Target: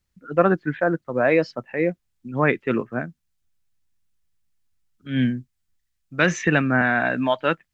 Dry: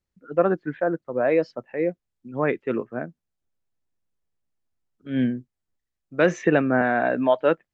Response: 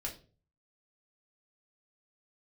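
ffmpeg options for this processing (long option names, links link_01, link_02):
-af "asetnsamples=nb_out_samples=441:pad=0,asendcmd='3.01 equalizer g -14.5',equalizer=frequency=480:width_type=o:width=2.1:gain=-8,volume=9dB"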